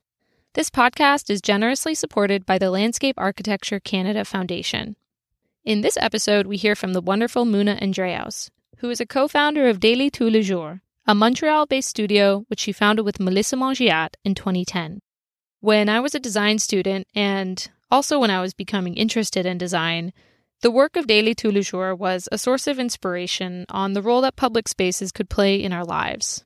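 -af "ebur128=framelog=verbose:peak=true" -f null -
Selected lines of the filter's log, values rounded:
Integrated loudness:
  I:         -20.6 LUFS
  Threshold: -30.8 LUFS
Loudness range:
  LRA:         3.1 LU
  Threshold: -41.0 LUFS
  LRA low:   -22.3 LUFS
  LRA high:  -19.2 LUFS
True peak:
  Peak:       -2.1 dBFS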